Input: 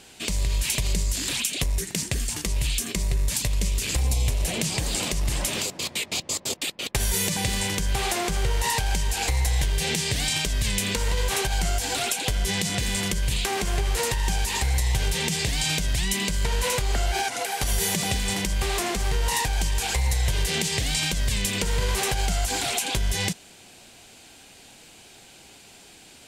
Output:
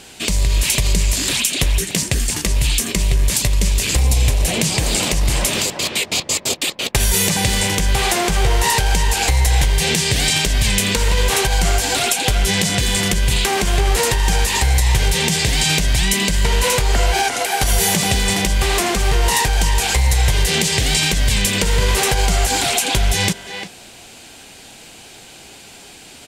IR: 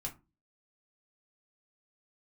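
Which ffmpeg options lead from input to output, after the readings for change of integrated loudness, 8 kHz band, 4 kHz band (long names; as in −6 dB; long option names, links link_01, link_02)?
+8.5 dB, +8.5 dB, +8.5 dB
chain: -filter_complex "[0:a]asplit=2[link_01][link_02];[link_02]adelay=350,highpass=300,lowpass=3400,asoftclip=type=hard:threshold=-19dB,volume=-7dB[link_03];[link_01][link_03]amix=inputs=2:normalize=0,acontrast=36,volume=3dB"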